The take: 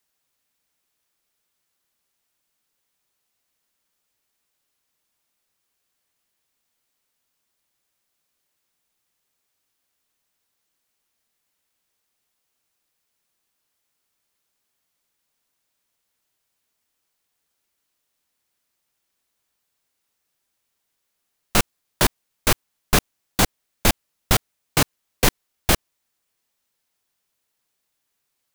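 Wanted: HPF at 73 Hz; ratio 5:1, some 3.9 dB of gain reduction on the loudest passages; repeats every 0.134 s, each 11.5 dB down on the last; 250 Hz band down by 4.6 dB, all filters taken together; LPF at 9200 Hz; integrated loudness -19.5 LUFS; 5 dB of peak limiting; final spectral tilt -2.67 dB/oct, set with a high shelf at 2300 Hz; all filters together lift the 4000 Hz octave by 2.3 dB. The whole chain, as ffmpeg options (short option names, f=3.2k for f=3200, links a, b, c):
-af "highpass=73,lowpass=9.2k,equalizer=f=250:t=o:g=-6.5,highshelf=f=2.3k:g=-5.5,equalizer=f=4k:t=o:g=8,acompressor=threshold=-19dB:ratio=5,alimiter=limit=-12.5dB:level=0:latency=1,aecho=1:1:134|268|402:0.266|0.0718|0.0194,volume=10.5dB"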